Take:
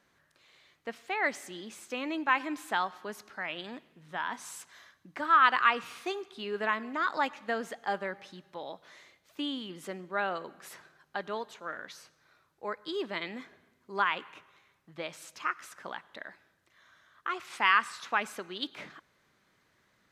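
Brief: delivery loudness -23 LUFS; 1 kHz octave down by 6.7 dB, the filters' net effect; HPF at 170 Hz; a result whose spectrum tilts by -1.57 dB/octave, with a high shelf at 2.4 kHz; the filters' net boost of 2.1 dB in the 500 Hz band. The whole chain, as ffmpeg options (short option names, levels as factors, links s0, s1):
-af "highpass=170,equalizer=f=500:t=o:g=5.5,equalizer=f=1000:t=o:g=-8,highshelf=f=2400:g=-9,volume=4.73"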